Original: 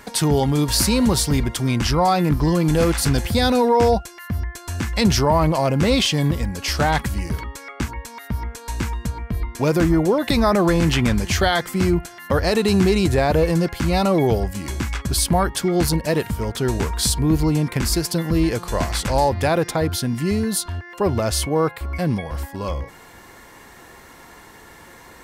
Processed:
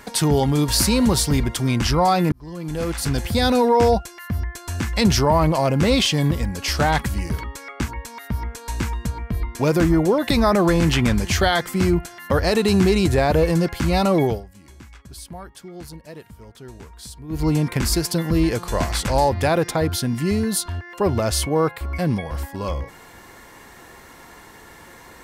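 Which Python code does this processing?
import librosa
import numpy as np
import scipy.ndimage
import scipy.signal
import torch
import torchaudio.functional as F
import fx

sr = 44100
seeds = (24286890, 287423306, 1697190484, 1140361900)

y = fx.edit(x, sr, fx.fade_in_span(start_s=2.32, length_s=1.2),
    fx.fade_down_up(start_s=14.22, length_s=3.27, db=-18.5, fade_s=0.21), tone=tone)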